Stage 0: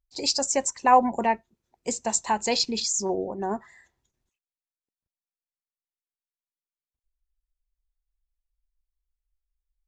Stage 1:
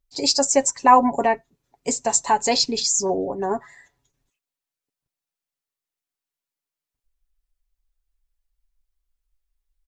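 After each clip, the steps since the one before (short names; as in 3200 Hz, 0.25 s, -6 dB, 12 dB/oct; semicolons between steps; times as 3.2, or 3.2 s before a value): comb 7.1 ms, depth 59%; dynamic EQ 2700 Hz, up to -4 dB, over -42 dBFS, Q 1.4; gain +4.5 dB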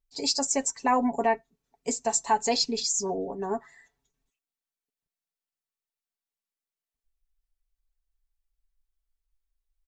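comb 4.5 ms, depth 50%; gain -7.5 dB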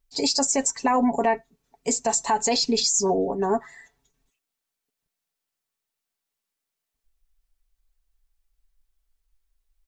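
limiter -21 dBFS, peak gain reduction 9 dB; gain +8 dB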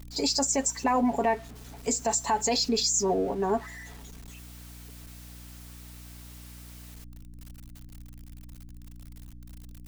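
zero-crossing step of -39 dBFS; hum 60 Hz, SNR 15 dB; gain -4 dB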